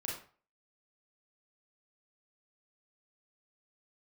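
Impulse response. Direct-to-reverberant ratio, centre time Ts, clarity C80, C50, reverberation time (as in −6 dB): −3.5 dB, 41 ms, 8.5 dB, 3.0 dB, 0.40 s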